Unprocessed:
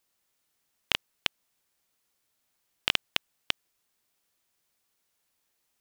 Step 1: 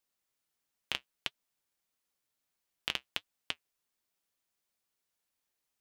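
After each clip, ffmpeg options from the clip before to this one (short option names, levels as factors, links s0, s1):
-af "flanger=delay=3.1:depth=4.7:regen=-63:speed=1.5:shape=triangular,volume=0.631"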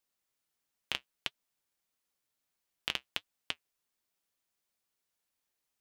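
-af anull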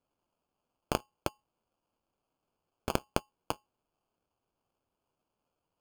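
-af "lowpass=f=2600:t=q:w=0.5098,lowpass=f=2600:t=q:w=0.6013,lowpass=f=2600:t=q:w=0.9,lowpass=f=2600:t=q:w=2.563,afreqshift=-3000,acrusher=samples=23:mix=1:aa=0.000001,volume=2.66"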